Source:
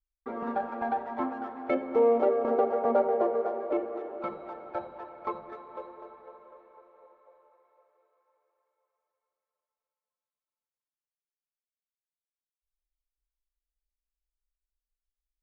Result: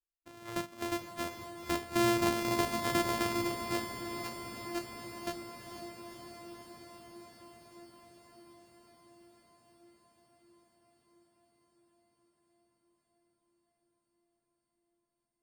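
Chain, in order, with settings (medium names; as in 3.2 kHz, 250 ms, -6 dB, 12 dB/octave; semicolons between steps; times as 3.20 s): sorted samples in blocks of 128 samples; spectral noise reduction 11 dB; echo that smears into a reverb 489 ms, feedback 76%, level -9 dB; trim -5.5 dB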